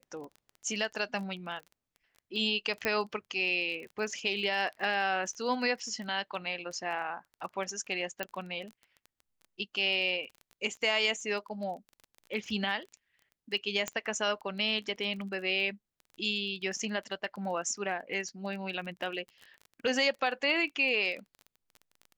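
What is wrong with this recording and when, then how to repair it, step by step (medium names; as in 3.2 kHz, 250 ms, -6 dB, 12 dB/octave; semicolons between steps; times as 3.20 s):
crackle 20 per s -39 dBFS
2.85 s: pop -14 dBFS
8.23 s: pop -17 dBFS
13.88 s: pop -16 dBFS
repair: de-click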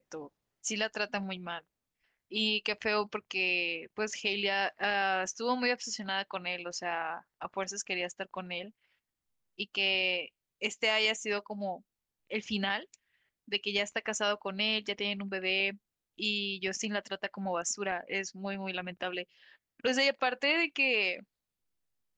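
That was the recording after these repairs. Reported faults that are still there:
nothing left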